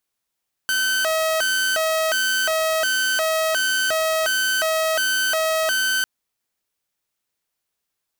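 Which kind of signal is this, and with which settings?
siren hi-lo 639–1,530 Hz 1.4 per second saw −16 dBFS 5.35 s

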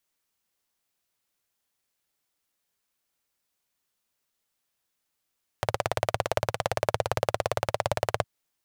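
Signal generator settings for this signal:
pulse-train model of a single-cylinder engine, steady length 2.61 s, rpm 2,100, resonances 110/580 Hz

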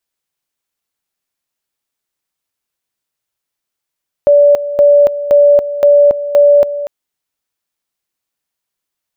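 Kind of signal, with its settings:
tone at two levels in turn 578 Hz −3.5 dBFS, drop 13 dB, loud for 0.28 s, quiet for 0.24 s, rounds 5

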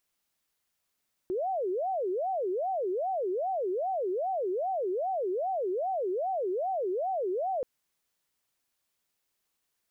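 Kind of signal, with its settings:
siren wail 359–773 Hz 2.5 per second sine −27.5 dBFS 6.33 s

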